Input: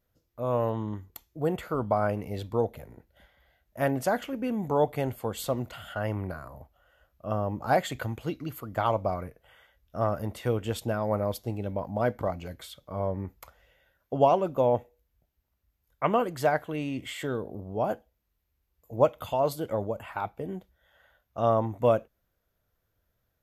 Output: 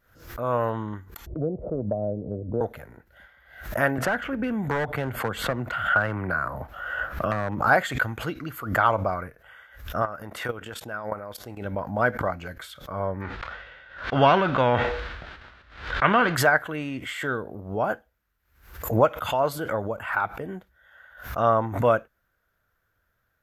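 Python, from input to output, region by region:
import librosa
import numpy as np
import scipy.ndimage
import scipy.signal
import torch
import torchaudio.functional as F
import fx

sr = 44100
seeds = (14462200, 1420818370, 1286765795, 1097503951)

y = fx.chain(x, sr, fx.ellip_lowpass(hz=610.0, order=4, stop_db=60),
    fx.band_squash(depth_pct=70), at=(1.26, 2.61))
y = fx.chain(y, sr, fx.bass_treble(bass_db=2, treble_db=-9),
    fx.clip_hard(threshold_db=-22.5),
    fx.band_squash(depth_pct=100), at=(3.98, 7.6))
y = fx.chain(y, sr, fx.low_shelf(hz=200.0, db=-7.0),
    fx.level_steps(step_db=13), at=(10.02, 11.65))
y = fx.envelope_flatten(y, sr, power=0.6, at=(13.2, 16.35), fade=0.02)
y = fx.cheby1_lowpass(y, sr, hz=3800.0, order=3, at=(13.2, 16.35), fade=0.02)
y = fx.sustainer(y, sr, db_per_s=40.0, at=(13.2, 16.35), fade=0.02)
y = fx.peak_eq(y, sr, hz=1500.0, db=14.0, octaves=0.88)
y = fx.pre_swell(y, sr, db_per_s=100.0)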